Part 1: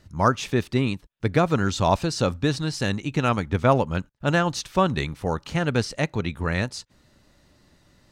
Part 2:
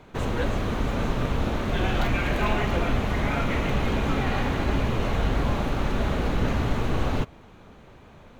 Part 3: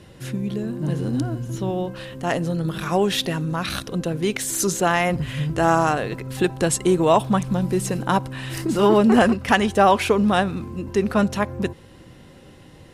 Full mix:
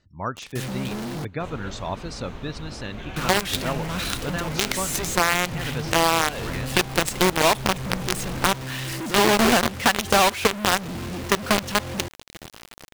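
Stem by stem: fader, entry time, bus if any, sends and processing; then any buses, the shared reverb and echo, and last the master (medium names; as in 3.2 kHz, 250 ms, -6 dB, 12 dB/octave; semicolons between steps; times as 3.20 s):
-10.5 dB, 0.00 s, no send, spectral gate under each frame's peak -30 dB strong
-5.5 dB, 1.25 s, no send, auto duck -7 dB, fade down 1.90 s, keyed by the first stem
-5.0 dB, 0.35 s, muted 1.25–3.16 s, no send, companded quantiser 2-bit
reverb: none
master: peaking EQ 3.4 kHz +3.5 dB 2.7 oct; compression 2.5:1, threshold -16 dBFS, peak gain reduction 7 dB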